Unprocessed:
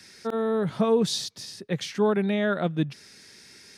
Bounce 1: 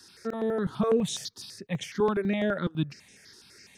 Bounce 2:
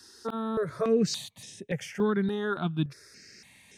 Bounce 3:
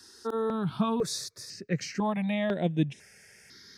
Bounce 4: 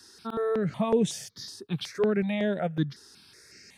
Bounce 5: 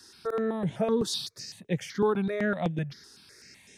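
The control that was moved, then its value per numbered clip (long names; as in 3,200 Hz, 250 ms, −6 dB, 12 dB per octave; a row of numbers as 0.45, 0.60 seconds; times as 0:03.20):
step-sequenced phaser, speed: 12, 3.5, 2, 5.4, 7.9 Hertz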